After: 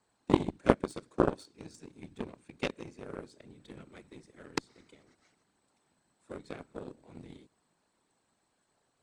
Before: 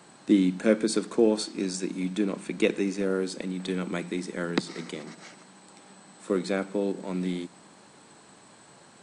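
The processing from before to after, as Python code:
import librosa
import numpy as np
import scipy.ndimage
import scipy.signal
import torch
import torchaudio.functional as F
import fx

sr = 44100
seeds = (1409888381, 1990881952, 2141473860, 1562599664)

y = fx.whisperise(x, sr, seeds[0])
y = fx.cheby_harmonics(y, sr, harmonics=(3,), levels_db=(-10,), full_scale_db=-6.5)
y = F.gain(torch.from_numpy(y), 3.0).numpy()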